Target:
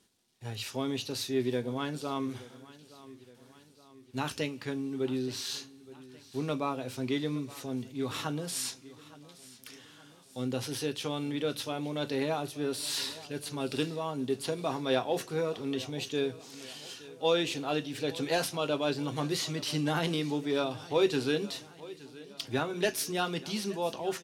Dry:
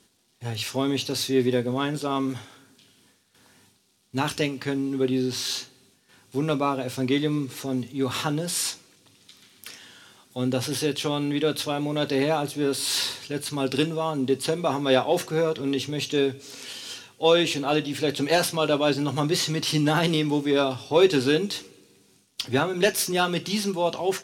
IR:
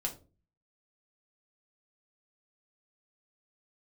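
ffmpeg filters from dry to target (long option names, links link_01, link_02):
-af "aecho=1:1:870|1740|2610|3480:0.112|0.0595|0.0315|0.0167,volume=-8dB"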